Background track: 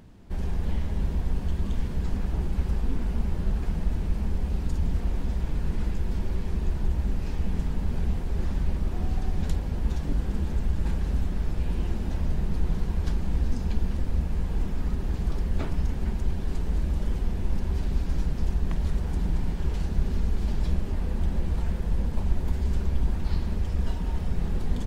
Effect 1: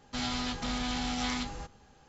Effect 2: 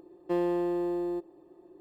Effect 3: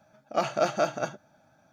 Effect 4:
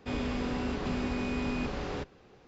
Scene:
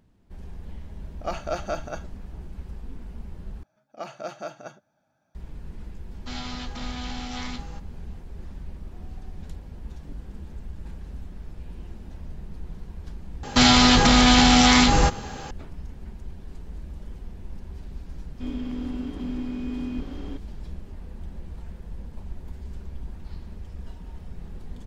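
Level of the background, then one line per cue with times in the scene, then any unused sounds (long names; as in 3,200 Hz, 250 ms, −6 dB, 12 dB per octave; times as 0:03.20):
background track −11.5 dB
0:00.90: mix in 3 −4.5 dB
0:03.63: overwrite with 3 −10 dB
0:06.13: mix in 1 −2 dB + low-pass filter 6,700 Hz
0:13.43: overwrite with 1 −5.5 dB + boost into a limiter +29 dB
0:18.34: mix in 4 −11 dB + hollow resonant body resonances 270/3,200 Hz, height 18 dB, ringing for 55 ms
not used: 2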